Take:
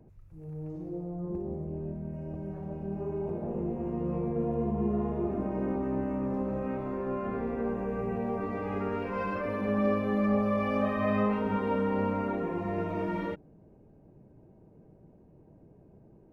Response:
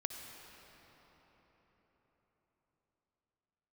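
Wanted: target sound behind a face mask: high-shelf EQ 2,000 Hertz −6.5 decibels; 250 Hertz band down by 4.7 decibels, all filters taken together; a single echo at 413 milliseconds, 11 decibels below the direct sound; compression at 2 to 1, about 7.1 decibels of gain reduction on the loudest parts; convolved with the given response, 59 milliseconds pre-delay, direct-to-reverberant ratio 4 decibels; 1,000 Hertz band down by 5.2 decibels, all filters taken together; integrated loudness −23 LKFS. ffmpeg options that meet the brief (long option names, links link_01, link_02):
-filter_complex "[0:a]equalizer=frequency=250:width_type=o:gain=-6,equalizer=frequency=1000:width_type=o:gain=-4.5,acompressor=threshold=-40dB:ratio=2,aecho=1:1:413:0.282,asplit=2[link_01][link_02];[1:a]atrim=start_sample=2205,adelay=59[link_03];[link_02][link_03]afir=irnorm=-1:irlink=0,volume=-4dB[link_04];[link_01][link_04]amix=inputs=2:normalize=0,highshelf=frequency=2000:gain=-6.5,volume=16.5dB"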